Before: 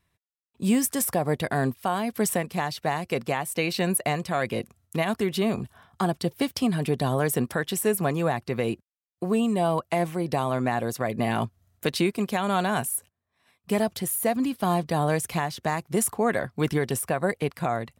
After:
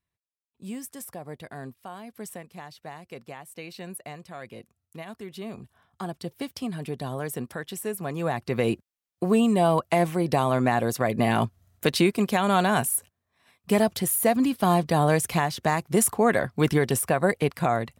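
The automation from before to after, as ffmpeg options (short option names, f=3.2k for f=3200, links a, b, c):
-af "volume=3dB,afade=t=in:st=5.21:d=1.1:silence=0.473151,afade=t=in:st=8.05:d=0.64:silence=0.298538"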